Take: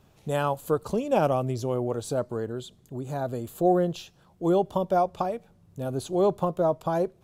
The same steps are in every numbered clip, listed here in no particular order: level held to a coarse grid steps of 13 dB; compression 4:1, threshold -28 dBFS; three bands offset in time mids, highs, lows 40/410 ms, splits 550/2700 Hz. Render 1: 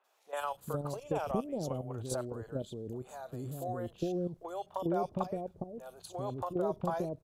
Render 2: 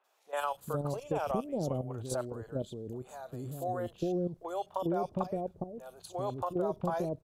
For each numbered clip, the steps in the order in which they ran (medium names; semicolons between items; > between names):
level held to a coarse grid > compression > three bands offset in time; level held to a coarse grid > three bands offset in time > compression